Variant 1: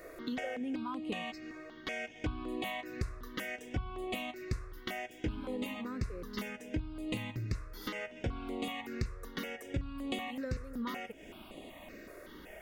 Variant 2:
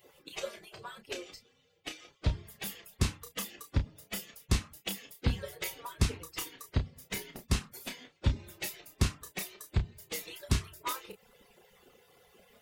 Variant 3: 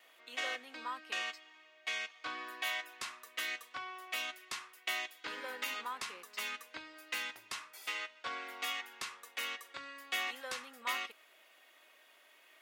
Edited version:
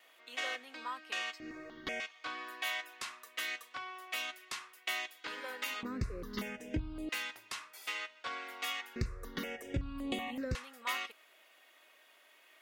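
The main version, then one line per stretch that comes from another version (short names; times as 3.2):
3
1.4–2 from 1
5.83–7.09 from 1
8.96–10.55 from 1
not used: 2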